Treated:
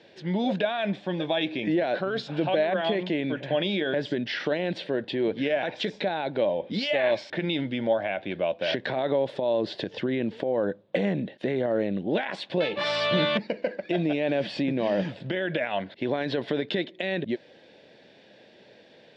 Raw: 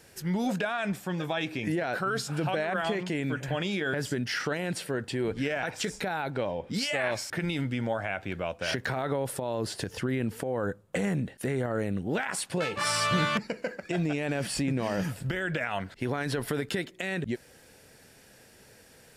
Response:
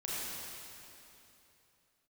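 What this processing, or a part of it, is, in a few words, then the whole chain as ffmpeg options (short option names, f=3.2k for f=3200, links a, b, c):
kitchen radio: -af "highpass=180,equalizer=f=200:t=q:w=4:g=3,equalizer=f=330:t=q:w=4:g=5,equalizer=f=590:t=q:w=4:g=8,equalizer=f=1.3k:t=q:w=4:g=-10,equalizer=f=3.6k:t=q:w=4:g=8,lowpass=f=4k:w=0.5412,lowpass=f=4k:w=1.3066,volume=1.5dB"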